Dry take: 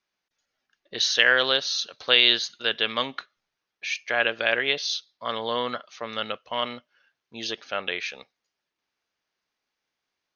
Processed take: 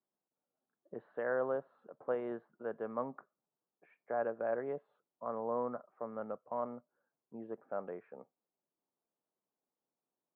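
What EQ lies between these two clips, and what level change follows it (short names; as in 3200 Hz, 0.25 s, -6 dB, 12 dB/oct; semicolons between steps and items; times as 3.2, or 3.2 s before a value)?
HPF 140 Hz 24 dB/oct; Bessel low-pass 670 Hz, order 6; dynamic EQ 320 Hz, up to -5 dB, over -46 dBFS, Q 0.9; -2.0 dB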